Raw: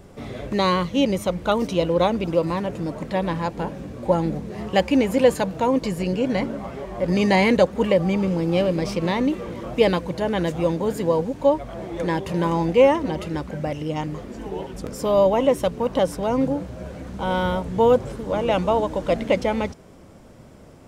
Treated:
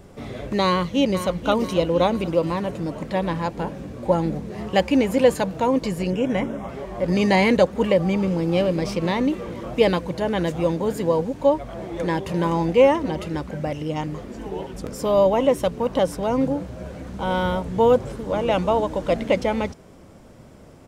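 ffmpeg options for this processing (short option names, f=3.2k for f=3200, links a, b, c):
-filter_complex "[0:a]asplit=2[a][b];[b]afade=t=in:st=0.65:d=0.01,afade=t=out:st=1.43:d=0.01,aecho=0:1:490|980|1470|1960|2450:0.298538|0.149269|0.0746346|0.0373173|0.0186586[c];[a][c]amix=inputs=2:normalize=0,asettb=1/sr,asplit=3[d][e][f];[d]atrim=end=6.104[g];[e]atrim=start=6.1:end=6.69,asetpts=PTS-STARTPTS,afade=t=in:d=0.004:c=qsin,afade=t=out:st=0.586:d=0.004:c=qsin,asuperstop=centerf=4400:order=4:qfactor=2.9[h];[f]atrim=start=6.686[i];[g][h]acrossfade=d=0.004:c1=hsin:c2=qsin[j];[j][i]acrossfade=d=0.004:c1=qsin:c2=hsin"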